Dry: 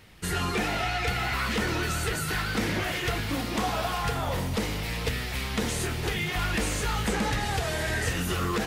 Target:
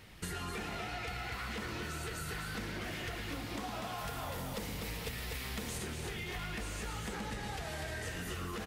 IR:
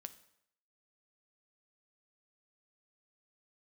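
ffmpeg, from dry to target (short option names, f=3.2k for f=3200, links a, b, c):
-filter_complex "[0:a]aecho=1:1:110.8|244.9:0.251|0.562,acompressor=threshold=-36dB:ratio=6,asettb=1/sr,asplit=3[a][b][c];[a]atrim=end=3.984[d];[b]atrim=start=3.98:end=5.78,asetpts=PTS-STARTPTS,afade=t=in:d=0.004:c=qsin,afade=t=out:st=1.796:d=0.004:c=qsin,highshelf=f=10k:g=10.5[e];[c]atrim=start=5.776[f];[d][e]acrossfade=d=0.004:c1=hsin:c2=qsin[g];[g][f]acrossfade=d=0.004:c1=qsin:c2=hsin,volume=-2dB"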